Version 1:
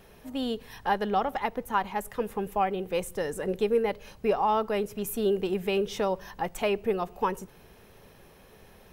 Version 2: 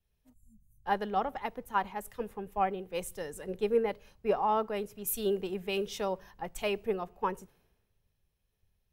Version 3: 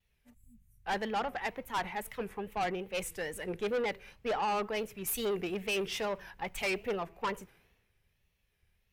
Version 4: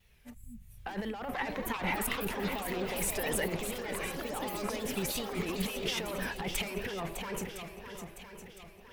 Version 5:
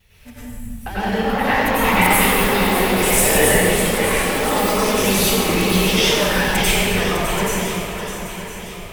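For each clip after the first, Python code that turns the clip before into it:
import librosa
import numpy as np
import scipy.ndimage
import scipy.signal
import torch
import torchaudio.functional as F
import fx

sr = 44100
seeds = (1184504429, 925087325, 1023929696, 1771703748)

y1 = fx.spec_erase(x, sr, start_s=0.33, length_s=0.51, low_hz=220.0, high_hz=6000.0)
y1 = fx.band_widen(y1, sr, depth_pct=100)
y1 = F.gain(torch.from_numpy(y1), -5.5).numpy()
y2 = fx.peak_eq(y1, sr, hz=2200.0, db=10.5, octaves=1.1)
y2 = fx.wow_flutter(y2, sr, seeds[0], rate_hz=2.1, depth_cents=110.0)
y2 = fx.tube_stage(y2, sr, drive_db=30.0, bias=0.25)
y2 = F.gain(torch.from_numpy(y2), 2.0).numpy()
y3 = fx.over_compress(y2, sr, threshold_db=-42.0, ratio=-1.0)
y3 = fx.echo_swing(y3, sr, ms=1009, ratio=1.5, feedback_pct=38, wet_db=-8.5)
y3 = fx.echo_pitch(y3, sr, ms=699, semitones=5, count=3, db_per_echo=-6.0)
y3 = F.gain(torch.from_numpy(y3), 5.0).numpy()
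y4 = fx.rev_plate(y3, sr, seeds[1], rt60_s=1.6, hf_ratio=0.9, predelay_ms=80, drr_db=-10.0)
y4 = F.gain(torch.from_numpy(y4), 8.5).numpy()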